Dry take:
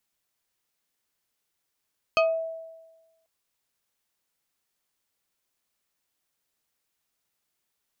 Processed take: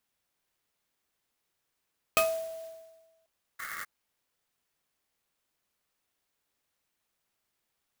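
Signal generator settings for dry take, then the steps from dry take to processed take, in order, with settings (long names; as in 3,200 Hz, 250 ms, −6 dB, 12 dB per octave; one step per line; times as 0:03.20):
two-operator FM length 1.09 s, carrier 652 Hz, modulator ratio 2.9, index 1.5, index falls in 0.29 s exponential, decay 1.20 s, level −16 dB
dynamic equaliser 560 Hz, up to −6 dB, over −38 dBFS, Q 1.5
sound drawn into the spectrogram noise, 0:03.59–0:03.85, 1,100–2,200 Hz −39 dBFS
converter with an unsteady clock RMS 0.047 ms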